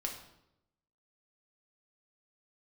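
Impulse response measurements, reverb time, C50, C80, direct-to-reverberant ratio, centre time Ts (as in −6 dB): 0.85 s, 7.0 dB, 9.5 dB, 0.5 dB, 25 ms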